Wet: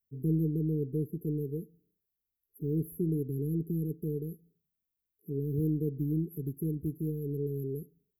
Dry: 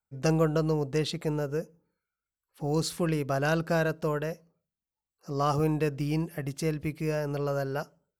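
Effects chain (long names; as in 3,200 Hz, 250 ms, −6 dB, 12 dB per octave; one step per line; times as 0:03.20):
linear-phase brick-wall band-stop 460–11,000 Hz
one half of a high-frequency compander encoder only
level −1.5 dB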